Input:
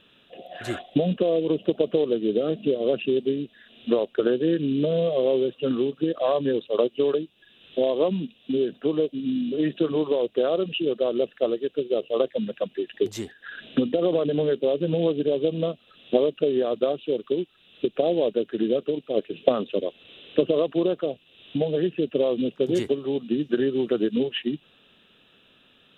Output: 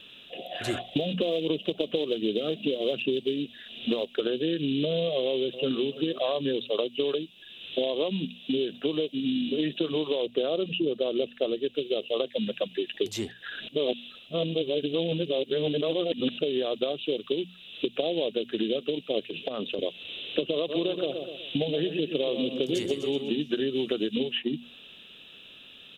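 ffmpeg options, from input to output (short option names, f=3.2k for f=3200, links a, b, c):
-filter_complex "[0:a]asplit=3[a][b][c];[a]afade=t=out:st=0.77:d=0.02[d];[b]aphaser=in_gain=1:out_gain=1:delay=4:decay=0.26:speed=1.3:type=sinusoidal,afade=t=in:st=0.77:d=0.02,afade=t=out:st=4.21:d=0.02[e];[c]afade=t=in:st=4.21:d=0.02[f];[d][e][f]amix=inputs=3:normalize=0,asplit=2[g][h];[h]afade=t=in:st=5.2:d=0.01,afade=t=out:st=5.85:d=0.01,aecho=0:1:330|660|990:0.125893|0.050357|0.0201428[i];[g][i]amix=inputs=2:normalize=0,asettb=1/sr,asplit=3[j][k][l];[j]atrim=end=10.264[m];[k]atrim=start=10.26:end=11.75,asetpts=PTS-STARTPTS,afade=t=in:d=0.004:c=qsin,afade=t=out:st=1.486:d=0.004:c=qsin,tiltshelf=f=970:g=5[n];[l]atrim=start=11.746[o];[m][n]acrossfade=d=0.004:c1=hsin:c2=qsin[p];[p][o]acrossfade=d=0.004:c1=qsin:c2=hsin,asettb=1/sr,asplit=3[q][r][s];[q]atrim=end=19.274[t];[r]atrim=start=19.27:end=19.79,asetpts=PTS-STARTPTS,afade=t=in:d=0.004:c=qsin,afade=t=out:st=0.516:d=0.004:c=qsin,acompressor=threshold=-28dB:ratio=12:attack=3.2:release=140:knee=1:detection=peak[u];[s]atrim=start=19.786[v];[t][u]acrossfade=d=0.004:c1=hsin:c2=qsin[w];[w][v]acrossfade=d=0.004:c1=qsin:c2=hsin,asplit=3[x][y][z];[x]afade=t=out:st=20.68:d=0.02[aa];[y]aecho=1:1:124|248|372|496:0.335|0.137|0.0563|0.0231,afade=t=in:st=20.68:d=0.02,afade=t=out:st=23.39:d=0.02[ab];[z]afade=t=in:st=23.39:d=0.02[ac];[aa][ab][ac]amix=inputs=3:normalize=0,asplit=3[ad][ae][af];[ad]atrim=end=13.682[ag];[ae]atrim=start=13.678:end=16.382,asetpts=PTS-STARTPTS,areverse[ah];[af]atrim=start=16.378[ai];[ag][ah]acrossfade=d=0.004:c1=hsin:c2=hsin[aj];[aj][ai]acrossfade=d=0.004:c1=hsin:c2=hsin,bandreject=f=60:t=h:w=6,bandreject=f=120:t=h:w=6,bandreject=f=180:t=h:w=6,bandreject=f=240:t=h:w=6,acrossover=split=1700|4000[ak][al][am];[ak]acompressor=threshold=-28dB:ratio=4[an];[al]acompressor=threshold=-49dB:ratio=4[ao];[am]acompressor=threshold=-52dB:ratio=4[ap];[an][ao][ap]amix=inputs=3:normalize=0,highshelf=f=2.1k:t=q:w=1.5:g=6.5,volume=2.5dB"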